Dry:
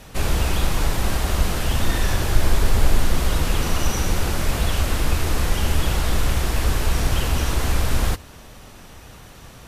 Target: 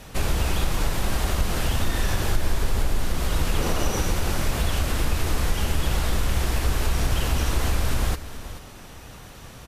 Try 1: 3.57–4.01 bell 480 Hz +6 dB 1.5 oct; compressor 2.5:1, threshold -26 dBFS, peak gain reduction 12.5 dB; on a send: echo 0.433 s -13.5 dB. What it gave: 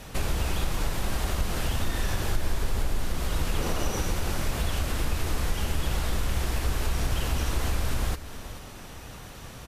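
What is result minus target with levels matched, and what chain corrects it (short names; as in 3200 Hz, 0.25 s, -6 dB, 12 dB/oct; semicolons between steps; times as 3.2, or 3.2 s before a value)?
compressor: peak gain reduction +4 dB
3.57–4.01 bell 480 Hz +6 dB 1.5 oct; compressor 2.5:1, threshold -19 dBFS, peak gain reduction 8 dB; on a send: echo 0.433 s -13.5 dB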